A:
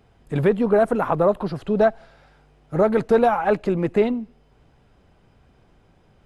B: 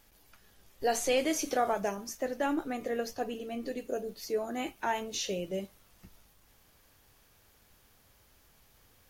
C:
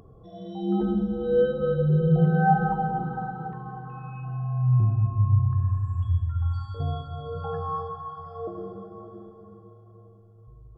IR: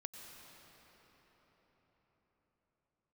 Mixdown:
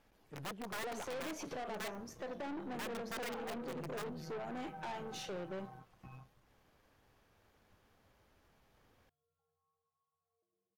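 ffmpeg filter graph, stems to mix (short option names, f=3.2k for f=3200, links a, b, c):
-filter_complex "[0:a]aeval=exprs='(mod(4.22*val(0)+1,2)-1)/4.22':c=same,volume=-18.5dB[a];[1:a]lowpass=f=1.4k:p=1,acompressor=threshold=-32dB:ratio=6,volume=2dB,asplit=2[b][c];[2:a]acompressor=mode=upward:threshold=-25dB:ratio=2.5,alimiter=limit=-20.5dB:level=0:latency=1,adelay=1950,volume=-16.5dB[d];[c]apad=whole_len=561037[e];[d][e]sidechaingate=range=-37dB:threshold=-57dB:ratio=16:detection=peak[f];[a][b][f]amix=inputs=3:normalize=0,aeval=exprs='(tanh(89.1*val(0)+0.6)-tanh(0.6))/89.1':c=same,lowshelf=f=110:g=-7.5"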